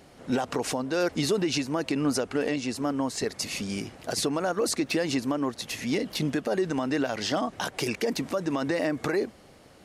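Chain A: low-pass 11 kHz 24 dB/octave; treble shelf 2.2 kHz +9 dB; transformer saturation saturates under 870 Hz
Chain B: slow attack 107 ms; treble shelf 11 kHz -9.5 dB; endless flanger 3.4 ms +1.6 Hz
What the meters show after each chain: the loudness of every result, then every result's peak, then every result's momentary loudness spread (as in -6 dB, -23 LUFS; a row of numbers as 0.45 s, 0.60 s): -26.5 LUFS, -33.0 LUFS; -8.5 dBFS, -18.0 dBFS; 5 LU, 8 LU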